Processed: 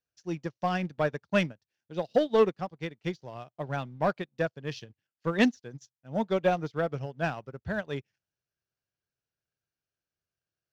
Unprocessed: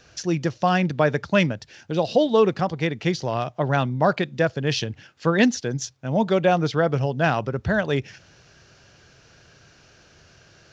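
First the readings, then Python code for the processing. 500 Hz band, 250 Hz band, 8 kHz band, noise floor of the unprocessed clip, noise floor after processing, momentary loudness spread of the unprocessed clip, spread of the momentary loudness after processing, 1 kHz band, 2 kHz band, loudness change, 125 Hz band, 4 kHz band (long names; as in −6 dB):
−7.5 dB, −8.5 dB, can't be measured, −55 dBFS, below −85 dBFS, 8 LU, 14 LU, −8.5 dB, −8.5 dB, −8.0 dB, −11.5 dB, −10.5 dB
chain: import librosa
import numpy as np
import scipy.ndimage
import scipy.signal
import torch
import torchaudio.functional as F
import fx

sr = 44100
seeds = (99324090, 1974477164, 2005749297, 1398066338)

y = fx.leveller(x, sr, passes=1)
y = fx.upward_expand(y, sr, threshold_db=-34.0, expansion=2.5)
y = y * 10.0 ** (-5.5 / 20.0)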